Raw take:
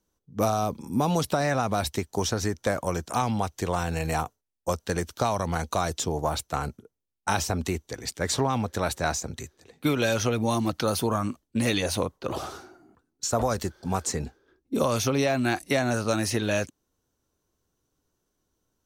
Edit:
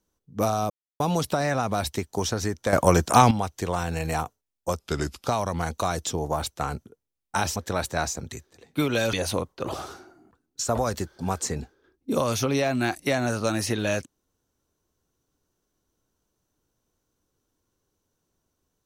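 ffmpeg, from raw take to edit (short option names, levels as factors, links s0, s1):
-filter_complex "[0:a]asplit=9[s0][s1][s2][s3][s4][s5][s6][s7][s8];[s0]atrim=end=0.7,asetpts=PTS-STARTPTS,afade=t=out:st=0.696:d=0.004:c=hsin[s9];[s1]atrim=start=0.7:end=1,asetpts=PTS-STARTPTS,volume=0[s10];[s2]atrim=start=1:end=2.732,asetpts=PTS-STARTPTS,afade=t=in:d=0.004:c=hsin[s11];[s3]atrim=start=2.728:end=3.312,asetpts=PTS-STARTPTS,volume=3.16[s12];[s4]atrim=start=3.308:end=4.794[s13];[s5]atrim=start=4.79:end=5.19,asetpts=PTS-STARTPTS,asetrate=37485,aresample=44100[s14];[s6]atrim=start=5.186:end=7.492[s15];[s7]atrim=start=8.628:end=10.202[s16];[s8]atrim=start=11.768[s17];[s9][s10][s11]concat=n=3:v=0:a=1[s18];[s18][s12]acrossfade=d=0.004:c1=hsin:c2=hsin[s19];[s19][s13]acrossfade=d=0.004:c1=hsin:c2=hsin[s20];[s20][s14]acrossfade=d=0.004:c1=hsin:c2=hsin[s21];[s21][s15]acrossfade=d=0.004:c1=hsin:c2=hsin[s22];[s22][s16]acrossfade=d=0.004:c1=hsin:c2=hsin[s23];[s23][s17]acrossfade=d=0.004:c1=hsin:c2=hsin"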